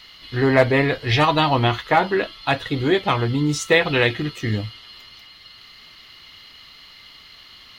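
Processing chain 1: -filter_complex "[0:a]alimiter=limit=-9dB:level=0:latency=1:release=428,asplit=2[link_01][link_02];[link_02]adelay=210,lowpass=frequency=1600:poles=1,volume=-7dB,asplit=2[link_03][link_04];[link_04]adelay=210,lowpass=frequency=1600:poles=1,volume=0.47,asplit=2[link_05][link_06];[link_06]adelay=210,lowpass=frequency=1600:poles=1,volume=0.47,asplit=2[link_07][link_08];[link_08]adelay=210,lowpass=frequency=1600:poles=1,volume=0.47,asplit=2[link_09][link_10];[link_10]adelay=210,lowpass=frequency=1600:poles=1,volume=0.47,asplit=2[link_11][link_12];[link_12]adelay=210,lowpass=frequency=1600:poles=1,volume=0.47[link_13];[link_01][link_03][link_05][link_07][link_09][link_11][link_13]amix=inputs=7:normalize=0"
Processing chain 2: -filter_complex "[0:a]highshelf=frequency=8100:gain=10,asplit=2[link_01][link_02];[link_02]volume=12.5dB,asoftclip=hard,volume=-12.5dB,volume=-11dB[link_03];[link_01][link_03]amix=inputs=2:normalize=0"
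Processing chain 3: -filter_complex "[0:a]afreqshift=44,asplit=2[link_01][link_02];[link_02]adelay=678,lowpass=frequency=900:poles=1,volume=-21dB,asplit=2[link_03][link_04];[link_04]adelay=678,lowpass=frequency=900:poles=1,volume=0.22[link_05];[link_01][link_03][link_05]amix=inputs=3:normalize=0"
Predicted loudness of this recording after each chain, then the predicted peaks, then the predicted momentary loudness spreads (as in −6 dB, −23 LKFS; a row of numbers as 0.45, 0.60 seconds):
−21.5, −17.5, −19.5 LKFS; −7.0, −1.5, −1.5 dBFS; 13, 11, 9 LU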